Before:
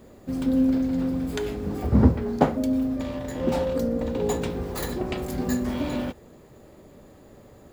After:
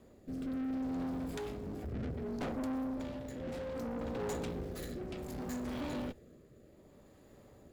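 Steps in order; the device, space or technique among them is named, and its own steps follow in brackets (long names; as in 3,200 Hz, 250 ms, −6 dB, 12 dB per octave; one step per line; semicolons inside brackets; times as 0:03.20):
overdriven rotary cabinet (tube saturation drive 30 dB, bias 0.65; rotating-speaker cabinet horn 0.65 Hz)
level −4 dB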